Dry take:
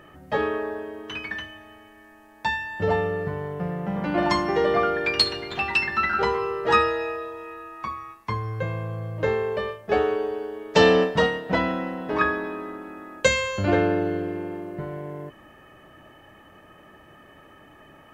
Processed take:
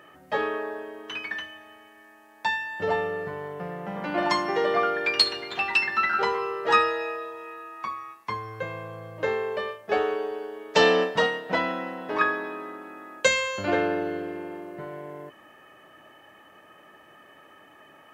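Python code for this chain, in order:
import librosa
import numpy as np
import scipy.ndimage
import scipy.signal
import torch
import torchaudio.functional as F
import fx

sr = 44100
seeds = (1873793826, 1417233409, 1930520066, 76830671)

y = fx.highpass(x, sr, hz=470.0, slope=6)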